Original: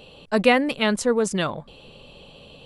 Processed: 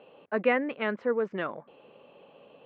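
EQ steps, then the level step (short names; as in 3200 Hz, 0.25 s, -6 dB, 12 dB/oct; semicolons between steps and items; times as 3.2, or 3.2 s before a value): HPF 320 Hz 12 dB/oct; LPF 2100 Hz 24 dB/oct; dynamic EQ 810 Hz, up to -6 dB, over -34 dBFS, Q 1.4; -3.5 dB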